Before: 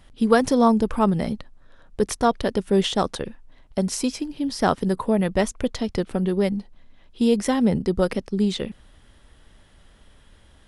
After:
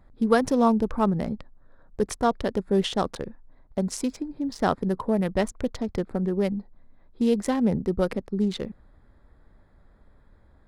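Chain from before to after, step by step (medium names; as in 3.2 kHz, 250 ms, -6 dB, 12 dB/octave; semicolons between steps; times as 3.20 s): local Wiener filter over 15 samples; trim -3 dB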